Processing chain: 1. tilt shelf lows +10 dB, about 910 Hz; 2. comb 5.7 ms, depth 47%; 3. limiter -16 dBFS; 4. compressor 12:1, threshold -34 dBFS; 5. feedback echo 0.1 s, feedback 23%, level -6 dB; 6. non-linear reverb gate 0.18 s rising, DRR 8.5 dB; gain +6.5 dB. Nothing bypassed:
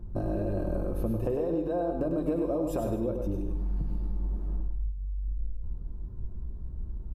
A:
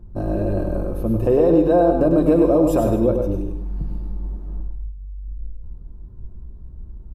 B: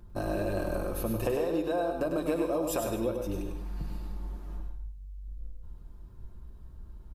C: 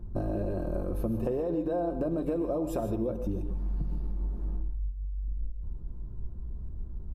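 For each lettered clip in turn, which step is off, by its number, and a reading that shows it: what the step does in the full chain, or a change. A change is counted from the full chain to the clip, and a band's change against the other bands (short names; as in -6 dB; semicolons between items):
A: 4, mean gain reduction 5.5 dB; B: 1, 2 kHz band +11.0 dB; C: 5, echo-to-direct -3.5 dB to -8.5 dB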